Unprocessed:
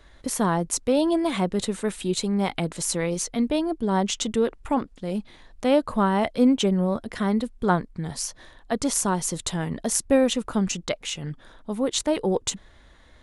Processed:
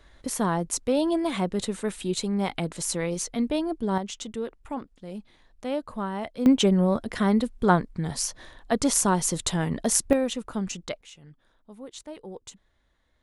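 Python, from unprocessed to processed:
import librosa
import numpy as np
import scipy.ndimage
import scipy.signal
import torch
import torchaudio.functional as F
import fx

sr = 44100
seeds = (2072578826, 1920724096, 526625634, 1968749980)

y = fx.gain(x, sr, db=fx.steps((0.0, -2.5), (3.98, -9.5), (6.46, 1.5), (10.13, -6.0), (11.01, -17.0)))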